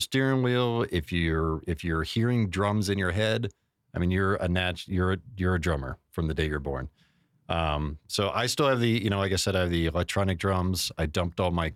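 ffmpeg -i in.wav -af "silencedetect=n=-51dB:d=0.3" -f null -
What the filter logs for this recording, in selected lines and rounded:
silence_start: 3.51
silence_end: 3.94 | silence_duration: 0.43
silence_start: 7.03
silence_end: 7.49 | silence_duration: 0.46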